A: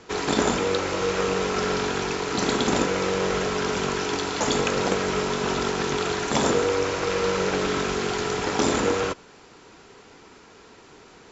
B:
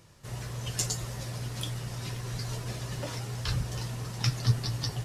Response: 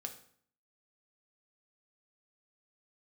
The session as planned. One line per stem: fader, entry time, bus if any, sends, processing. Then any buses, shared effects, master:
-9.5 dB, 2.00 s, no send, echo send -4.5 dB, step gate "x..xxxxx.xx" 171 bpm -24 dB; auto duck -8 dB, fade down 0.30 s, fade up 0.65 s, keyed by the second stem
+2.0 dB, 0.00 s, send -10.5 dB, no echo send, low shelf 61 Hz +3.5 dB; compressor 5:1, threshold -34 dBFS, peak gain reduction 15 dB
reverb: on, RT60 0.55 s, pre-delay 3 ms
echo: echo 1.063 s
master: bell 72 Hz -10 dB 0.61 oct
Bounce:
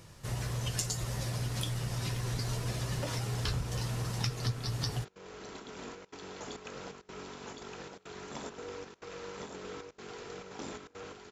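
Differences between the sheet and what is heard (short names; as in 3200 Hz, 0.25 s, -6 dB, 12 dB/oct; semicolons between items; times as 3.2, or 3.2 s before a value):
stem A -9.5 dB -> -20.5 dB; master: missing bell 72 Hz -10 dB 0.61 oct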